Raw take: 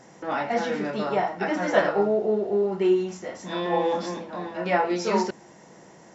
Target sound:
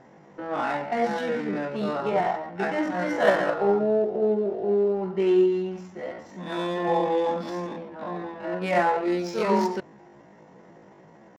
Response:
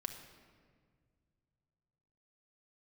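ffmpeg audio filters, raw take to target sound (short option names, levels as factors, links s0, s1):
-af "adynamicsmooth=sensitivity=5.5:basefreq=2600,atempo=0.54"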